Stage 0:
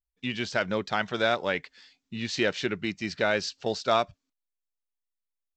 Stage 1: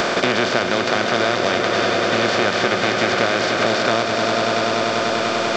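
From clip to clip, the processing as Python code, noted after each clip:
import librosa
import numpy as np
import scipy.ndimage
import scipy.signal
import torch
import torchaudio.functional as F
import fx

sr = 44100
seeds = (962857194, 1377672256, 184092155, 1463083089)

y = fx.bin_compress(x, sr, power=0.2)
y = fx.echo_swell(y, sr, ms=98, loudest=5, wet_db=-11)
y = fx.band_squash(y, sr, depth_pct=100)
y = y * 10.0 ** (-1.0 / 20.0)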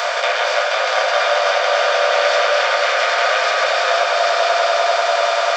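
y = scipy.signal.sosfilt(scipy.signal.ellip(4, 1.0, 60, 560.0, 'highpass', fs=sr, output='sos'), x)
y = fx.echo_alternate(y, sr, ms=239, hz=1900.0, feedback_pct=80, wet_db=-3.5)
y = fx.room_shoebox(y, sr, seeds[0], volume_m3=310.0, walls='furnished', distance_m=1.8)
y = y * 10.0 ** (-1.5 / 20.0)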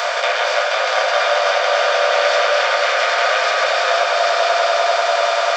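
y = x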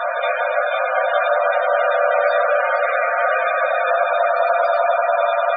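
y = fx.high_shelf(x, sr, hz=7000.0, db=-7.0)
y = fx.spec_topn(y, sr, count=32)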